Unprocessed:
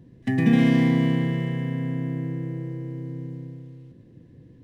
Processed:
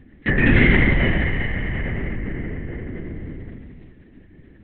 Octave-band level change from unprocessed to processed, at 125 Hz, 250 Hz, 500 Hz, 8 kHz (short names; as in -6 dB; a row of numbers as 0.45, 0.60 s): +1.5 dB, -1.5 dB, +4.5 dB, n/a